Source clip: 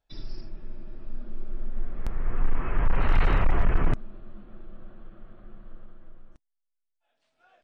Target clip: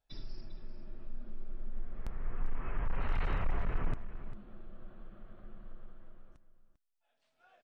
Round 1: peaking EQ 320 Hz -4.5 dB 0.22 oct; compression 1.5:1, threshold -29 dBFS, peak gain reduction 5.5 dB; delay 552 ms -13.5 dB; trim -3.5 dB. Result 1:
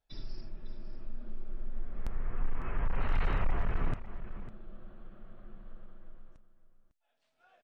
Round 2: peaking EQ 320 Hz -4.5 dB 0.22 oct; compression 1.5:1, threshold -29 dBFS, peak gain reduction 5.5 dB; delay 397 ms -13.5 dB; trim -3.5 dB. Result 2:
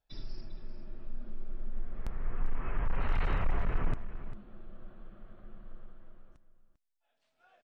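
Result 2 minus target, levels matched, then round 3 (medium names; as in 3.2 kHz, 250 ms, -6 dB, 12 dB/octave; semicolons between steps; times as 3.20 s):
compression: peak gain reduction -2.5 dB
peaking EQ 320 Hz -4.5 dB 0.22 oct; compression 1.5:1, threshold -37 dBFS, peak gain reduction 8 dB; delay 397 ms -13.5 dB; trim -3.5 dB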